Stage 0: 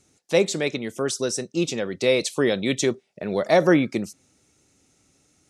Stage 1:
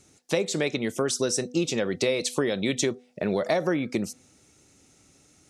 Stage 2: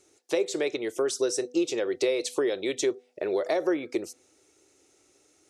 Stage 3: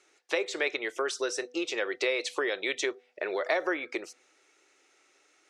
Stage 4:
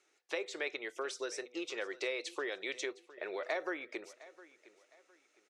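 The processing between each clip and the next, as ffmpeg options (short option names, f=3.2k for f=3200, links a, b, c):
-af "acompressor=threshold=-25dB:ratio=12,bandreject=f=247.3:t=h:w=4,bandreject=f=494.6:t=h:w=4,bandreject=f=741.9:t=h:w=4,volume=4dB"
-af "lowshelf=f=270:t=q:w=3:g=-9.5,volume=-4.5dB"
-af "bandpass=f=1.8k:t=q:w=1.1:csg=0,volume=7.5dB"
-af "aecho=1:1:710|1420|2130:0.112|0.0359|0.0115,volume=-8.5dB"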